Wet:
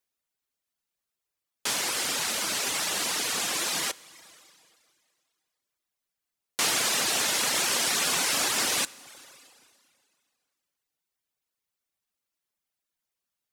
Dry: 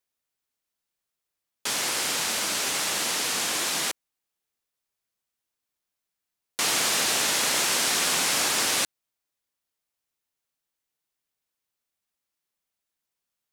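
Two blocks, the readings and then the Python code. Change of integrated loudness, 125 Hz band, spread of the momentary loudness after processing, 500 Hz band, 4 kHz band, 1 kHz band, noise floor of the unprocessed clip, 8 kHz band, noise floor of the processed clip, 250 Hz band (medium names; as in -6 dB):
-2.0 dB, -2.0 dB, 6 LU, -2.0 dB, -2.0 dB, -2.0 dB, -85 dBFS, -2.0 dB, under -85 dBFS, -2.0 dB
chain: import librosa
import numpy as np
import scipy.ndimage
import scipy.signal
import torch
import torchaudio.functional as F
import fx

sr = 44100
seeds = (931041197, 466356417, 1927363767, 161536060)

y = fx.rev_schroeder(x, sr, rt60_s=2.2, comb_ms=32, drr_db=10.5)
y = fx.dereverb_blind(y, sr, rt60_s=0.79)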